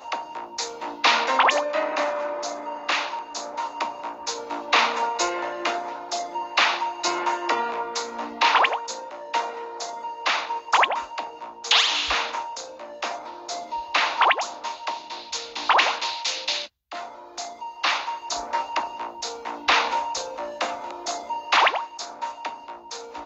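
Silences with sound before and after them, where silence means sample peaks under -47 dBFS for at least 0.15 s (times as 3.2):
16.68–16.91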